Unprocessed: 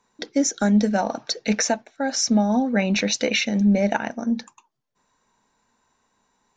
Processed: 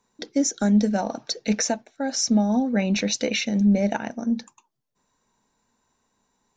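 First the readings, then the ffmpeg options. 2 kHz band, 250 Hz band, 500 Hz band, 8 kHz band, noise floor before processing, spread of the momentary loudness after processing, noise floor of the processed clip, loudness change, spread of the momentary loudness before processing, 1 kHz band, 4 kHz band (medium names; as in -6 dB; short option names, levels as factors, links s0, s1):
-5.0 dB, -0.5 dB, -2.5 dB, -1.5 dB, -70 dBFS, 8 LU, -74 dBFS, -1.5 dB, 8 LU, -4.0 dB, -2.5 dB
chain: -af "equalizer=f=1500:w=0.43:g=-5.5"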